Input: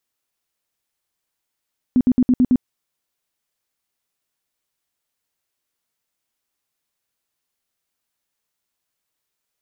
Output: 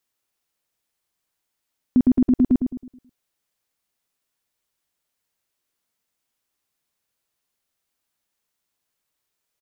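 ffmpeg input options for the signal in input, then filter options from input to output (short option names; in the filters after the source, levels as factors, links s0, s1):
-f lavfi -i "aevalsrc='0.299*sin(2*PI*251*mod(t,0.11))*lt(mod(t,0.11),12/251)':d=0.66:s=44100"
-filter_complex "[0:a]asplit=2[s0][s1];[s1]adelay=107,lowpass=f=920:p=1,volume=0.501,asplit=2[s2][s3];[s3]adelay=107,lowpass=f=920:p=1,volume=0.39,asplit=2[s4][s5];[s5]adelay=107,lowpass=f=920:p=1,volume=0.39,asplit=2[s6][s7];[s7]adelay=107,lowpass=f=920:p=1,volume=0.39,asplit=2[s8][s9];[s9]adelay=107,lowpass=f=920:p=1,volume=0.39[s10];[s0][s2][s4][s6][s8][s10]amix=inputs=6:normalize=0"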